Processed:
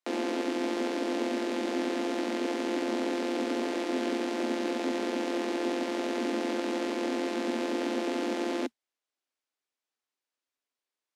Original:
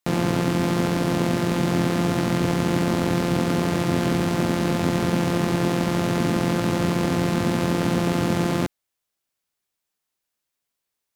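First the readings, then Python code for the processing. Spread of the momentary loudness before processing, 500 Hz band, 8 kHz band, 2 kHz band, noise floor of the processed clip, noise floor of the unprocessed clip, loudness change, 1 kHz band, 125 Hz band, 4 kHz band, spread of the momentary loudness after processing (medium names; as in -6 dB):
1 LU, -5.5 dB, -10.5 dB, -7.5 dB, under -85 dBFS, -82 dBFS, -8.5 dB, -8.0 dB, under -30 dB, -7.0 dB, 1 LU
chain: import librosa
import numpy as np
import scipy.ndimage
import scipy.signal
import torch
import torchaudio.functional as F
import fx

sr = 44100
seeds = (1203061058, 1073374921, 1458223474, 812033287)

y = scipy.signal.sosfilt(scipy.signal.butter(16, 230.0, 'highpass', fs=sr, output='sos'), x)
y = fx.dynamic_eq(y, sr, hz=1200.0, q=1.9, threshold_db=-45.0, ratio=4.0, max_db=-6)
y = fx.mod_noise(y, sr, seeds[0], snr_db=30)
y = fx.air_absorb(y, sr, metres=60.0)
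y = y * librosa.db_to_amplitude(-5.0)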